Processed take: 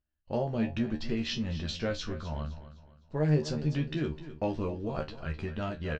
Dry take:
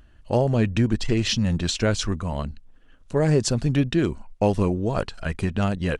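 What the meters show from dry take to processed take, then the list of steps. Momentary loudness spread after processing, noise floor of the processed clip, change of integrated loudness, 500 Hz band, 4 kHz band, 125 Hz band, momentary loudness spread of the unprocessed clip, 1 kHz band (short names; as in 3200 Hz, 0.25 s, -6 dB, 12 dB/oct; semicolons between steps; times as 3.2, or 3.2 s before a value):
10 LU, -62 dBFS, -9.5 dB, -9.5 dB, -10.0 dB, -9.5 dB, 7 LU, -9.5 dB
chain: gate -42 dBFS, range -23 dB; LPF 5300 Hz 24 dB/oct; resonator 76 Hz, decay 0.17 s, harmonics all, mix 100%; feedback echo 0.256 s, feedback 37%, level -14 dB; gain -3.5 dB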